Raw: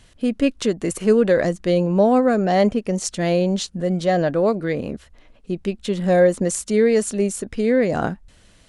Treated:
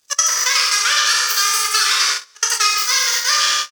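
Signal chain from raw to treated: minimum comb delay 1.5 ms; bell 2400 Hz +11.5 dB 0.45 oct; on a send: feedback echo 0.128 s, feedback 43%, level -8 dB; on the sum: Schroeder reverb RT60 2.9 s, combs from 33 ms, DRR -3 dB; in parallel at -7 dB: soft clip -7.5 dBFS, distortion -16 dB; on the sum: HPF 1500 Hz 12 dB/oct; vocal rider within 5 dB 0.5 s; crossover distortion -48 dBFS; gate -24 dBFS, range -29 dB; speed mistake 33 rpm record played at 78 rpm; high shelf 8600 Hz -7.5 dB; three-band squash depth 70%; gain +7.5 dB

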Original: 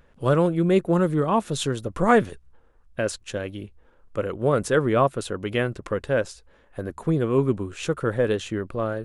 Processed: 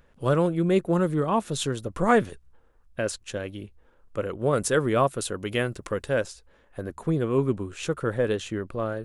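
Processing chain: high shelf 5200 Hz +3 dB, from 4.53 s +11.5 dB, from 6.26 s +2.5 dB; gain -2.5 dB

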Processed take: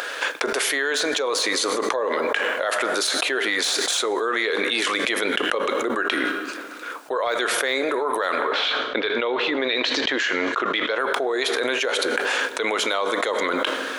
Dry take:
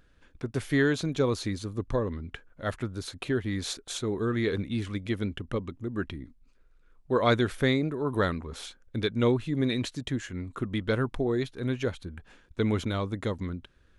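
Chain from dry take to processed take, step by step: HPF 510 Hz 24 dB/oct; de-esser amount 90%; 8.35–10.98 LPF 3200 Hz -> 6100 Hz 24 dB/oct; reverb RT60 1.3 s, pre-delay 5 ms, DRR 14.5 dB; fast leveller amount 100%

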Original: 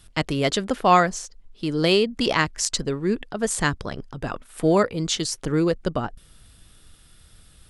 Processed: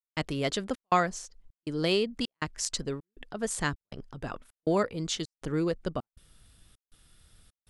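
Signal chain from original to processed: step gate "..xxxxxxx" 180 bpm -60 dB; gain -7.5 dB

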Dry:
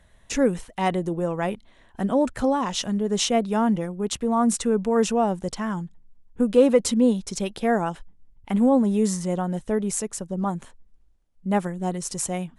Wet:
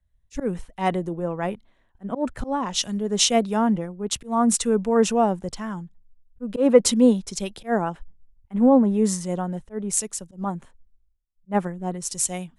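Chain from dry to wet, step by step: auto swell 0.104 s; three-band expander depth 70%

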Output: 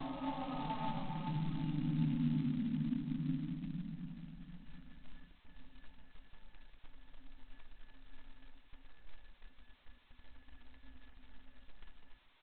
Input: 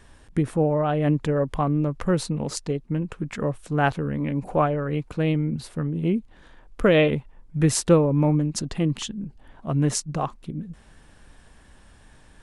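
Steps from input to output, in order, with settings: per-bin expansion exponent 1.5; low shelf 270 Hz +5.5 dB; in parallel at -2 dB: compressor 4:1, threshold -35 dBFS, peak gain reduction 20.5 dB; on the sum: soft clip -12 dBFS, distortion -15 dB; Paulstretch 7.3×, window 0.50 s, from 10.24; AGC gain up to 6.5 dB; bell 170 Hz +9.5 dB 1.7 oct; metallic resonator 260 Hz, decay 0.21 s, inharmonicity 0.03; flange 0.19 Hz, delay 2.8 ms, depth 6 ms, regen -2%; feedback echo 0.743 s, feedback 38%, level -16.5 dB; gate -58 dBFS, range -21 dB; gain +5 dB; G.726 16 kbps 8000 Hz

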